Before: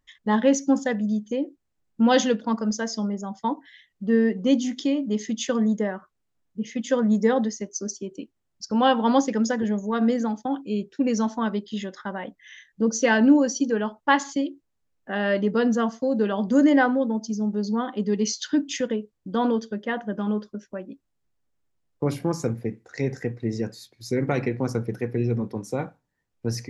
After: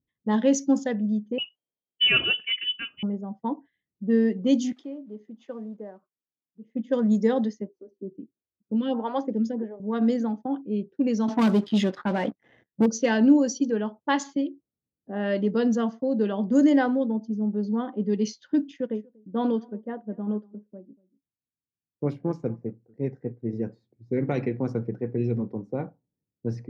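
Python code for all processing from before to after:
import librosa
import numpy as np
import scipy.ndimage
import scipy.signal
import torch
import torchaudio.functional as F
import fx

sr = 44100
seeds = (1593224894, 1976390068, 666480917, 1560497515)

y = fx.chain(x, sr, fx.freq_invert(carrier_hz=3200),
    fx.peak_eq(hz=600.0, db=7.0, octaves=2.5), at=(1.38, 3.03))
y = fx.chain(y, sr, fx.block_float(bits=5),
    fx.highpass(hz=1200.0, slope=6), at=(4.72, 6.75))
y = fx.chain(y, sr, fx.high_shelf(hz=5400.0, db=-10.0),
    fx.stagger_phaser(hz=1.6), at=(7.69, 9.8))
y = fx.chain(y, sr, fx.lowpass(hz=5800.0, slope=12),
    fx.leveller(passes=3), at=(11.28, 12.86))
y = fx.chain(y, sr, fx.echo_single(ms=239, db=-18.0),
    fx.upward_expand(threshold_db=-40.0, expansion=1.5), at=(18.71, 23.53))
y = fx.env_lowpass(y, sr, base_hz=330.0, full_db=-15.5)
y = scipy.signal.sosfilt(scipy.signal.butter(2, 110.0, 'highpass', fs=sr, output='sos'), y)
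y = fx.peak_eq(y, sr, hz=1400.0, db=-7.5, octaves=2.1)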